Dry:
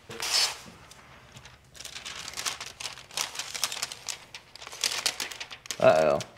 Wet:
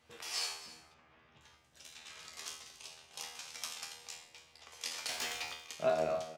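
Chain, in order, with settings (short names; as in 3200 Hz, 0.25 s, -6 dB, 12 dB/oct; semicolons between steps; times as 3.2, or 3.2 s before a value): 2.43–3.23 dynamic EQ 1500 Hz, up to -6 dB, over -45 dBFS, Q 0.77; 5.09–5.53 sample leveller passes 3; low shelf 79 Hz -8 dB; resonator 80 Hz, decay 0.56 s, harmonics all, mix 90%; 0.66–1.41 LPF 3200 Hz 12 dB/oct; doubler 15 ms -13 dB; echo 0.279 s -16.5 dB; gain -2 dB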